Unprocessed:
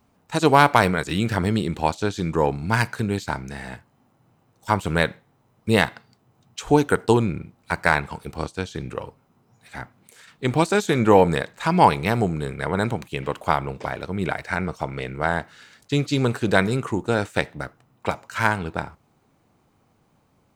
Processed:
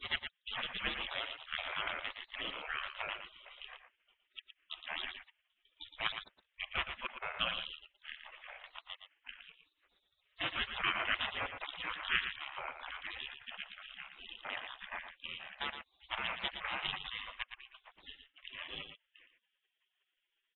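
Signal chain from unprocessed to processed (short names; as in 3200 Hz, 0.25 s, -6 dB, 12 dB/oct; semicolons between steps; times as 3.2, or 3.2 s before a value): slices in reverse order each 0.157 s, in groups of 3; steep low-pass 3200 Hz 96 dB/oct; spectral gate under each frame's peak -30 dB weak; on a send: echo 0.115 s -8.5 dB; on the sum: gain +7 dB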